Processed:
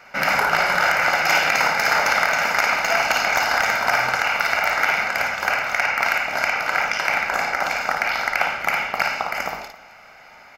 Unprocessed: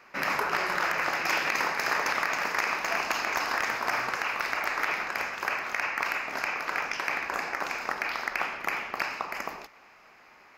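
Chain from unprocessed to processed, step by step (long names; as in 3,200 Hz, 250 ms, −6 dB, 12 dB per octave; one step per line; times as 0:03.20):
comb filter 1.4 ms, depth 57%
on a send: multi-tap delay 56/266 ms −5/−19.5 dB
on the sum: level +7 dB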